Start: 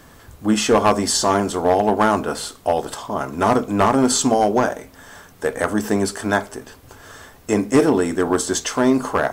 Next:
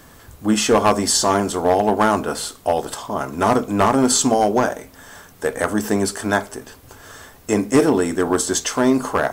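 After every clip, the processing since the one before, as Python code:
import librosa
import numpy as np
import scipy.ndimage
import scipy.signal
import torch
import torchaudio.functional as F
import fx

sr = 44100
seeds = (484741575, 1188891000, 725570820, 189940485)

y = fx.high_shelf(x, sr, hz=6800.0, db=4.5)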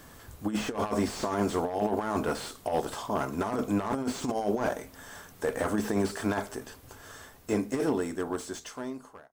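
y = fx.fade_out_tail(x, sr, length_s=2.81)
y = fx.over_compress(y, sr, threshold_db=-19.0, ratio=-0.5)
y = fx.slew_limit(y, sr, full_power_hz=140.0)
y = y * librosa.db_to_amplitude(-7.5)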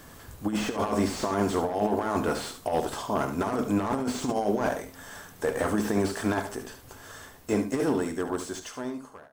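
y = x + 10.0 ** (-9.5 / 20.0) * np.pad(x, (int(72 * sr / 1000.0), 0))[:len(x)]
y = y * librosa.db_to_amplitude(2.0)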